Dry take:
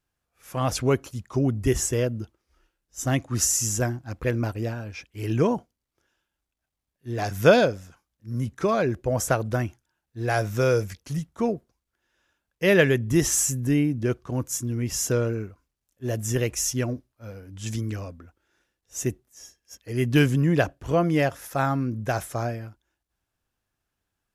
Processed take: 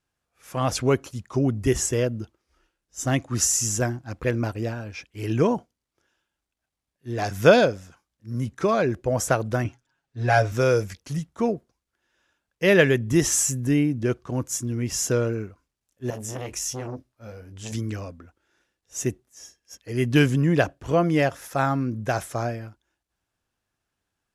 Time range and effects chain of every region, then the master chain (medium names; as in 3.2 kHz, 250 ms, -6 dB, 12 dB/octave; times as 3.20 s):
9.64–10.52 s: distance through air 54 m + comb 7.3 ms, depth 94%
16.10–17.72 s: compression 3:1, threshold -26 dBFS + doubling 23 ms -8.5 dB + transformer saturation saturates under 760 Hz
whole clip: low-pass 11 kHz 12 dB/octave; bass shelf 72 Hz -6.5 dB; trim +1.5 dB